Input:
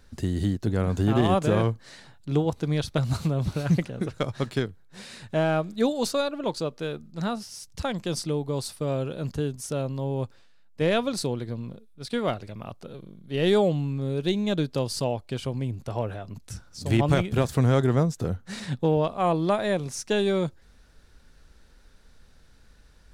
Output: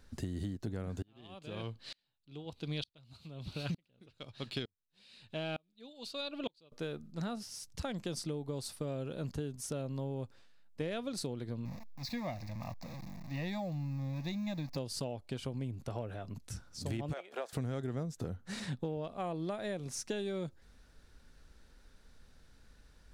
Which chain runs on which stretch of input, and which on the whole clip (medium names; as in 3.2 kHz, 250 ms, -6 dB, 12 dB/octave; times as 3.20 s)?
1.02–6.72 s: high-order bell 3.4 kHz +11.5 dB 1.2 oct + sawtooth tremolo in dB swelling 1.1 Hz, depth 38 dB
11.65–14.77 s: jump at every zero crossing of -36.5 dBFS + short-mantissa float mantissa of 6-bit + static phaser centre 2.1 kHz, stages 8
17.13–17.53 s: high-pass 590 Hz 24 dB/octave + tilt EQ -3.5 dB/octave
whole clip: dynamic bell 1 kHz, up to -5 dB, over -42 dBFS, Q 2.9; compression, threshold -30 dBFS; peaking EQ 260 Hz +2 dB 0.39 oct; trim -5 dB